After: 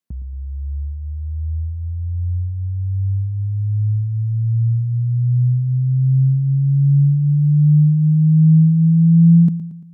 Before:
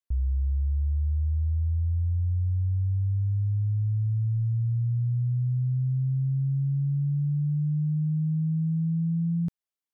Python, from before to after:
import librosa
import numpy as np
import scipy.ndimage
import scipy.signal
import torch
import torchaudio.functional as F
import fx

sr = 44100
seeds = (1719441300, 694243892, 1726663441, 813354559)

y = scipy.signal.sosfilt(scipy.signal.butter(2, 100.0, 'highpass', fs=sr, output='sos'), x)
y = fx.peak_eq(y, sr, hz=190.0, db=12.5, octaves=1.2)
y = fx.echo_feedback(y, sr, ms=114, feedback_pct=49, wet_db=-13)
y = y * librosa.db_to_amplitude(4.5)